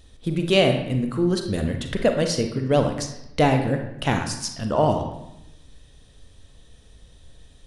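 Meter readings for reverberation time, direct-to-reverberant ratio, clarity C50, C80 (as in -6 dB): 0.85 s, 5.0 dB, 6.0 dB, 9.5 dB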